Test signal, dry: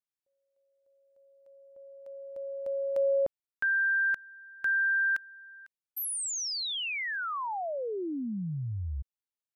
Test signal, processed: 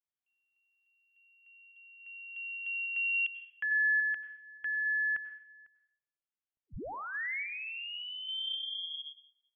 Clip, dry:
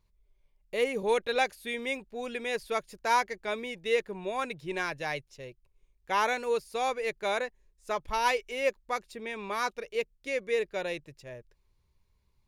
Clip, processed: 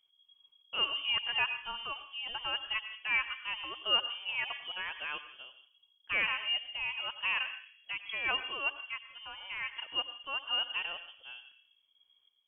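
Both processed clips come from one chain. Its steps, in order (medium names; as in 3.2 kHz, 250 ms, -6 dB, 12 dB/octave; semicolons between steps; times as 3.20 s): random-step tremolo; plate-style reverb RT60 0.68 s, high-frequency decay 0.45×, pre-delay 80 ms, DRR 10.5 dB; frequency inversion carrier 3.3 kHz; trim -2 dB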